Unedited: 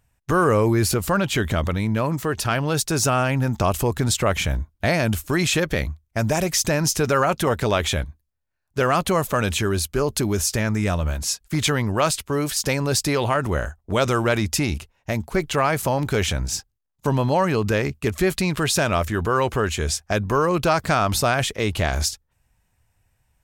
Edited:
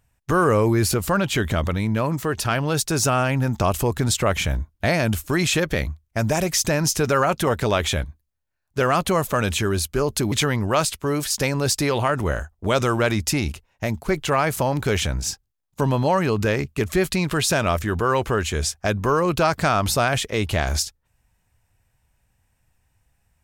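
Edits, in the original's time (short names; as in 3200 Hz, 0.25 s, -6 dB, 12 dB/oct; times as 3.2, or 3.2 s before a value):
10.32–11.58 cut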